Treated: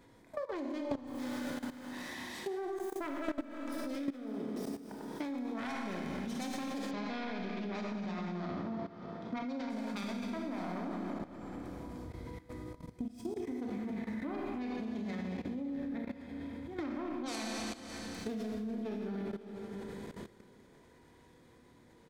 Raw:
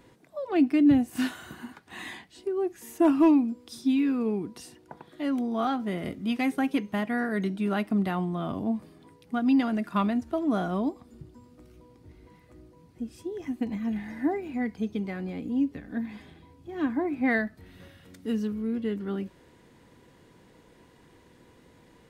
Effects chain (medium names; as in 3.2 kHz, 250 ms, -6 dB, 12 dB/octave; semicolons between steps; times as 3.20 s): self-modulated delay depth 0.64 ms; Schroeder reverb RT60 2.2 s, combs from 25 ms, DRR -1 dB; level held to a coarse grid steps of 17 dB; band-stop 2.8 kHz, Q 8.6; delay 552 ms -21.5 dB; compression 5:1, threshold -44 dBFS, peak gain reduction 24.5 dB; 6.91–9.70 s: low-pass 5.5 kHz 24 dB/octave; trim +7 dB